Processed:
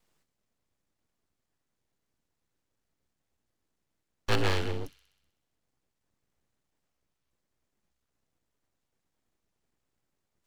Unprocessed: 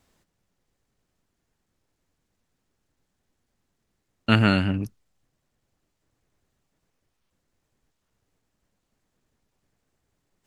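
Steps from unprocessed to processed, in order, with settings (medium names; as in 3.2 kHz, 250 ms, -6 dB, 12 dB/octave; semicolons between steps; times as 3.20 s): frequency shift +31 Hz; full-wave rectifier; feedback echo behind a high-pass 63 ms, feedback 65%, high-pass 2.9 kHz, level -12 dB; trim -5.5 dB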